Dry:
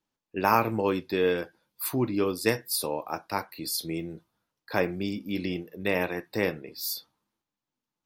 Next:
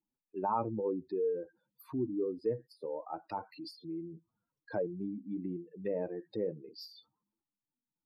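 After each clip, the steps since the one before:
expanding power law on the bin magnitudes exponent 2.4
treble cut that deepens with the level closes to 1,000 Hz, closed at −26 dBFS
level −7 dB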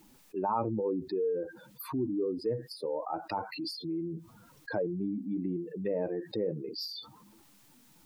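envelope flattener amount 50%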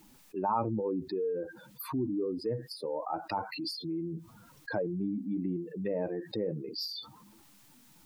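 parametric band 430 Hz −3.5 dB 0.97 octaves
level +1.5 dB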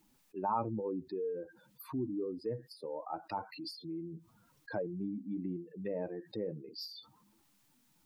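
expander for the loud parts 1.5 to 1, over −44 dBFS
level −2.5 dB

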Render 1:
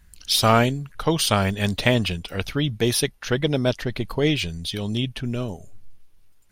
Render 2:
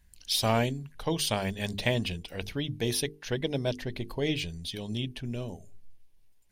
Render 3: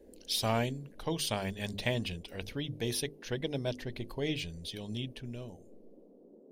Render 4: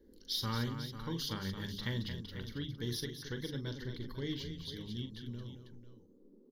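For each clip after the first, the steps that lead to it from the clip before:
parametric band 1,300 Hz −11 dB 0.32 octaves; mains-hum notches 50/100/150/200/250/300/350/400/450 Hz; level −7.5 dB
fade-out on the ending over 1.58 s; noise in a band 190–530 Hz −53 dBFS; level −4.5 dB
phaser with its sweep stopped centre 2,500 Hz, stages 6; multi-tap delay 42/222/496 ms −10/−9/−11.5 dB; level −2.5 dB

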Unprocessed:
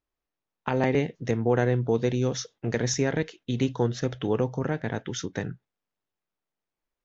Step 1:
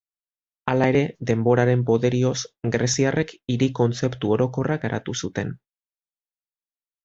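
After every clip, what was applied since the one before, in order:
downward expander −37 dBFS
level +5 dB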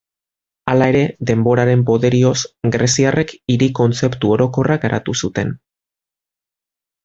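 brickwall limiter −11 dBFS, peak gain reduction 5 dB
level +8.5 dB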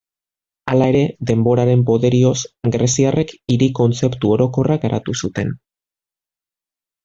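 flanger swept by the level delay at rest 11.3 ms, full sweep at −13 dBFS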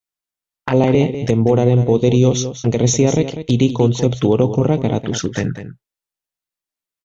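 single-tap delay 197 ms −11 dB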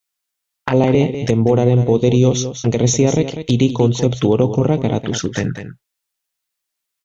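one half of a high-frequency compander encoder only

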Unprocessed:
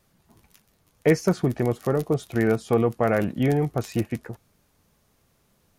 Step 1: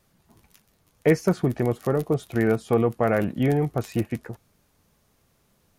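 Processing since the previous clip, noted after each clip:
dynamic equaliser 5,700 Hz, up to −4 dB, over −48 dBFS, Q 1.1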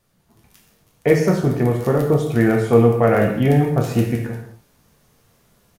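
automatic gain control gain up to 7 dB
double-tracking delay 26 ms −14 dB
reverb whose tail is shaped and stops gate 280 ms falling, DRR 0.5 dB
level −2.5 dB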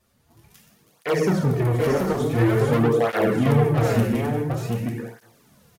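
soft clipping −17 dBFS, distortion −9 dB
single-tap delay 735 ms −4 dB
through-zero flanger with one copy inverted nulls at 0.48 Hz, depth 7.1 ms
level +3 dB

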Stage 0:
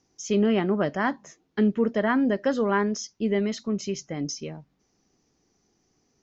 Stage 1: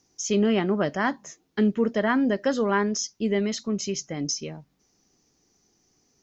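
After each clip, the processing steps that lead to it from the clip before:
high-shelf EQ 4,900 Hz +10 dB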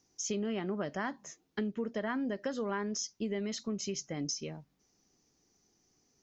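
downward compressor 6 to 1, threshold −26 dBFS, peak gain reduction 9 dB
level −5.5 dB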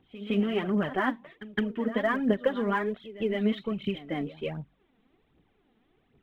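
downsampling to 8,000 Hz
phase shifter 1.3 Hz, delay 4.7 ms, feedback 64%
echo ahead of the sound 163 ms −15 dB
level +6 dB

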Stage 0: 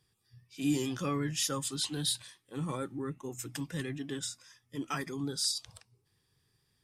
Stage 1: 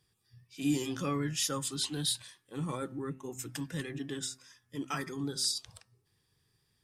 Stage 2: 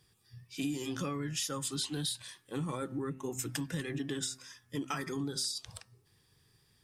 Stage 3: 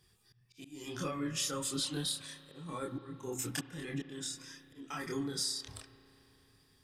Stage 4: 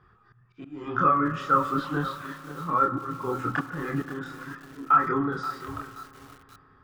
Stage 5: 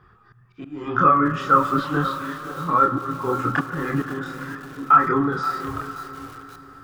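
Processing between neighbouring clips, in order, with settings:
hum removal 130.8 Hz, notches 14
downward compressor 12 to 1, threshold −38 dBFS, peak gain reduction 14 dB; level +6 dB
multi-voice chorus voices 6, 0.58 Hz, delay 27 ms, depth 2.9 ms; volume swells 363 ms; spring reverb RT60 3.7 s, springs 33 ms, chirp 65 ms, DRR 12.5 dB; level +3 dB
low-pass with resonance 1,300 Hz, resonance Q 7.5; feedback echo at a low word length 528 ms, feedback 35%, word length 8 bits, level −13 dB; level +9 dB
feedback delay with all-pass diffusion 540 ms, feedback 44%, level −14 dB; level +5.5 dB

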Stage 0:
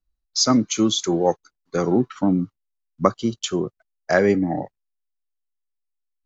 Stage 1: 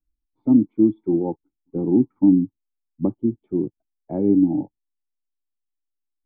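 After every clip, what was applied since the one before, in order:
formant resonators in series u
low-shelf EQ 310 Hz +12 dB
level +1.5 dB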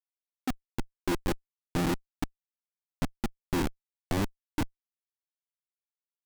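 gate with flip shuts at −11 dBFS, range −26 dB
comparator with hysteresis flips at −26.5 dBFS
level +3.5 dB

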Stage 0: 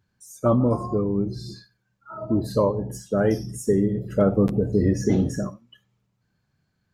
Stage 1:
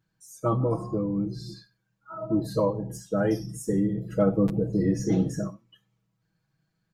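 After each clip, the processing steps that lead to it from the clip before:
comb filter 6.2 ms, depth 95%
level −6 dB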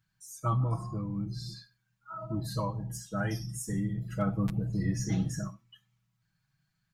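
drawn EQ curve 120 Hz 0 dB, 480 Hz −18 dB, 680 Hz −7 dB, 1,300 Hz −1 dB, 2,000 Hz +1 dB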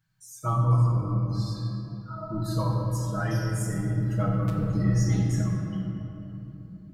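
rectangular room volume 190 cubic metres, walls hard, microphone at 0.57 metres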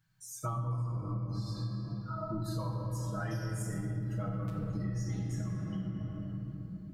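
downward compressor 6 to 1, threshold −33 dBFS, peak gain reduction 14.5 dB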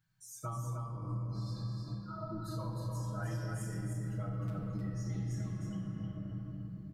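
single-tap delay 309 ms −5 dB
level −4.5 dB

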